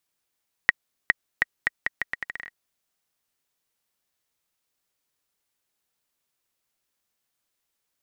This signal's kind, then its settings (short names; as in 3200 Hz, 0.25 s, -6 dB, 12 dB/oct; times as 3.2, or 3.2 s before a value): bouncing ball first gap 0.41 s, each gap 0.78, 1900 Hz, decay 23 ms -1.5 dBFS